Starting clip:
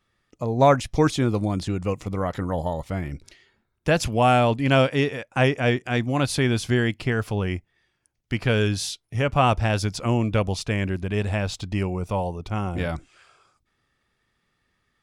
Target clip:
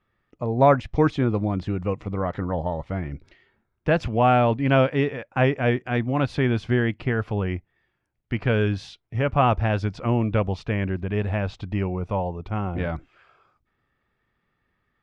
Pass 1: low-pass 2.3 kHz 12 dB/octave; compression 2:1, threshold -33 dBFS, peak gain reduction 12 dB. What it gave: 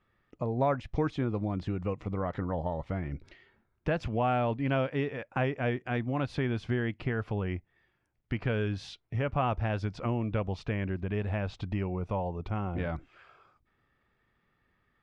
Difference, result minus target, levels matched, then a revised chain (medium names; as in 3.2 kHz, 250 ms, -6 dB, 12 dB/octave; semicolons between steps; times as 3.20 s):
compression: peak gain reduction +12 dB
low-pass 2.3 kHz 12 dB/octave